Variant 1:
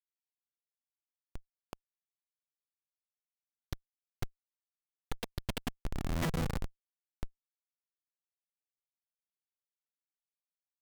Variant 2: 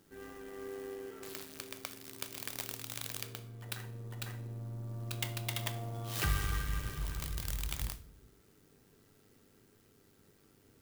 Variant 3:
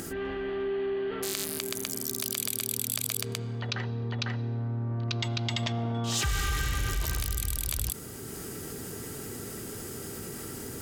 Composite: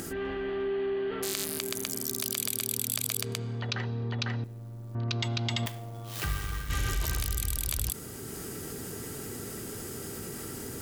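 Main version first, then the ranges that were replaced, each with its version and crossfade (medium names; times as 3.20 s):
3
4.44–4.95 s: from 2
5.66–6.70 s: from 2
not used: 1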